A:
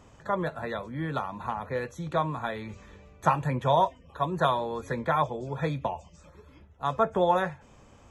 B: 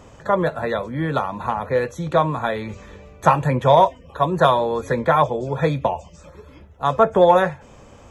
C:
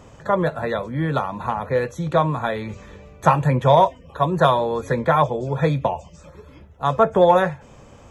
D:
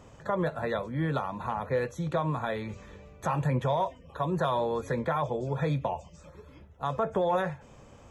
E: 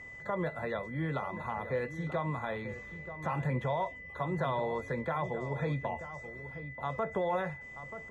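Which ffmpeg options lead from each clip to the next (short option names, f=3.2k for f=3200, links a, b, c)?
-af "equalizer=f=520:w=2.1:g=4,acontrast=45,volume=2.5dB"
-af "equalizer=f=140:w=1.9:g=3.5,volume=-1dB"
-af "alimiter=limit=-12.5dB:level=0:latency=1:release=65,volume=-6.5dB"
-filter_complex "[0:a]asplit=2[a][b];[b]adelay=932.9,volume=-11dB,highshelf=f=4k:g=-21[c];[a][c]amix=inputs=2:normalize=0,aeval=exprs='val(0)+0.01*sin(2*PI*2000*n/s)':c=same,acrossover=split=3900[d][e];[e]acompressor=threshold=-58dB:ratio=4:attack=1:release=60[f];[d][f]amix=inputs=2:normalize=0,volume=-5dB"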